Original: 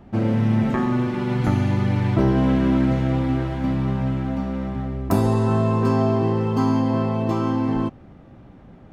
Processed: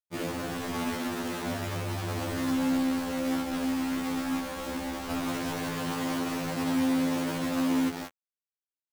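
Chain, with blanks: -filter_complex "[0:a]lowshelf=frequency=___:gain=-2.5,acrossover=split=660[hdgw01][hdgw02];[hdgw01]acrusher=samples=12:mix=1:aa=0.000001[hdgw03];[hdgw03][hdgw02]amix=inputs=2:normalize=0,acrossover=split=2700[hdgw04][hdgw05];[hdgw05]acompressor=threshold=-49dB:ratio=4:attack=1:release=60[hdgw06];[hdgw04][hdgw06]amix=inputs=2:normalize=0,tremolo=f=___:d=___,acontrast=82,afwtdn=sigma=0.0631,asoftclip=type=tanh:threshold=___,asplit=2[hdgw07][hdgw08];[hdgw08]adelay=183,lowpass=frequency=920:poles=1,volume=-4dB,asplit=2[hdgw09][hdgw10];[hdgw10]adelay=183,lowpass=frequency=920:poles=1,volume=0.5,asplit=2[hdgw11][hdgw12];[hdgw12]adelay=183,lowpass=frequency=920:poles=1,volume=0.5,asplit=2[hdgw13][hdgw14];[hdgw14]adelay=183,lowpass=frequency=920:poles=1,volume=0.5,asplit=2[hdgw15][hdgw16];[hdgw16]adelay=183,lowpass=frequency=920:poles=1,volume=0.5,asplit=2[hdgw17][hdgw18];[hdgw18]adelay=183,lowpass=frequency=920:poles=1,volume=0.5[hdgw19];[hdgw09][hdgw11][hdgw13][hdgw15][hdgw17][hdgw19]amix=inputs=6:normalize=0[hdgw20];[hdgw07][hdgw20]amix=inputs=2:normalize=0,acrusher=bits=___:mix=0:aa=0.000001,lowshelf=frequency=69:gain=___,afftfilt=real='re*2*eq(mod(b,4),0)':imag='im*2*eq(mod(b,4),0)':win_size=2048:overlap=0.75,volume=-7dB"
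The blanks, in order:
340, 58, 0.667, -20.5dB, 3, -9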